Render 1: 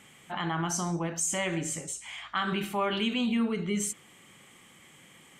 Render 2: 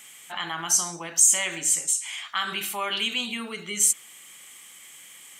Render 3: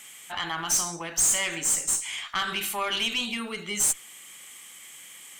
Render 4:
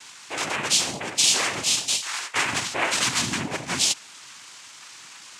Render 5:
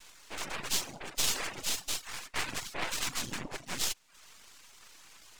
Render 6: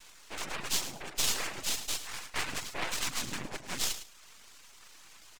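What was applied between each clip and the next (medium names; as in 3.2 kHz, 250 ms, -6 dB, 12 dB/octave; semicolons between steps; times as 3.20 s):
tilt EQ +4.5 dB/octave
valve stage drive 20 dB, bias 0.35; trim +2 dB
noise-vocoded speech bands 4; trim +4.5 dB
half-wave rectifier; reverb removal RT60 0.52 s; trim -6 dB
feedback delay 107 ms, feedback 22%, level -12 dB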